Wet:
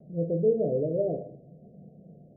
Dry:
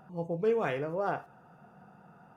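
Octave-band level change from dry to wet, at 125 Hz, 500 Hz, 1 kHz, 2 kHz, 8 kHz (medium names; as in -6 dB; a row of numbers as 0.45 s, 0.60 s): +7.5 dB, +5.0 dB, -12.0 dB, under -40 dB, no reading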